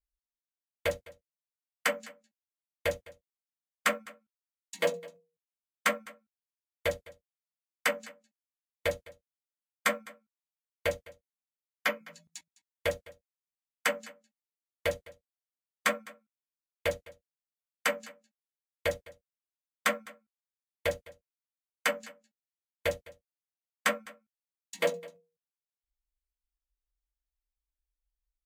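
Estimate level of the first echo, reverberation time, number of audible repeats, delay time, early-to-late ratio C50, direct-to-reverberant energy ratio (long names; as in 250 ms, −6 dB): −21.0 dB, no reverb audible, 1, 207 ms, no reverb audible, no reverb audible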